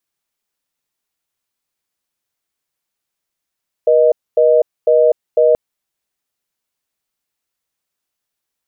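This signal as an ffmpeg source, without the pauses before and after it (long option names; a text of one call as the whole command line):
ffmpeg -f lavfi -i "aevalsrc='0.299*(sin(2*PI*480*t)+sin(2*PI*620*t))*clip(min(mod(t,0.5),0.25-mod(t,0.5))/0.005,0,1)':duration=1.68:sample_rate=44100" out.wav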